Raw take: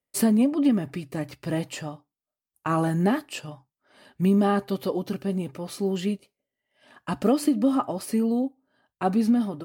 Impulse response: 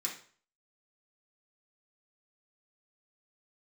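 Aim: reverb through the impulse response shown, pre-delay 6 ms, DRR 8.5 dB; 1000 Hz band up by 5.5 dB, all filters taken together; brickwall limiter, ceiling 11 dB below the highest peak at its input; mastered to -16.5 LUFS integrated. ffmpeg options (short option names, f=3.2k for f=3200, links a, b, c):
-filter_complex "[0:a]equalizer=f=1k:t=o:g=7.5,alimiter=limit=-18dB:level=0:latency=1,asplit=2[a][b];[1:a]atrim=start_sample=2205,adelay=6[c];[b][c]afir=irnorm=-1:irlink=0,volume=-10.5dB[d];[a][d]amix=inputs=2:normalize=0,volume=11.5dB"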